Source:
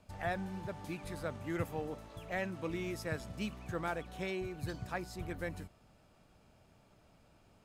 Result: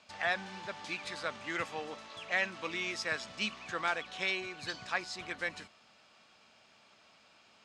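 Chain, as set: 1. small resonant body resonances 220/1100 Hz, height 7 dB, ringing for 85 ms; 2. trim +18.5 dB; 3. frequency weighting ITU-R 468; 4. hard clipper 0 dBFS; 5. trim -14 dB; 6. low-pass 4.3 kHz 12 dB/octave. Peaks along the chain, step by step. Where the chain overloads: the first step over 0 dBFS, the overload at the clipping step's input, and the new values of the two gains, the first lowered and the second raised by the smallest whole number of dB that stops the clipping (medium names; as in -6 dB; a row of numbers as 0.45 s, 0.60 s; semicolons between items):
-21.5 dBFS, -3.0 dBFS, -3.0 dBFS, -3.0 dBFS, -17.0 dBFS, -18.0 dBFS; nothing clips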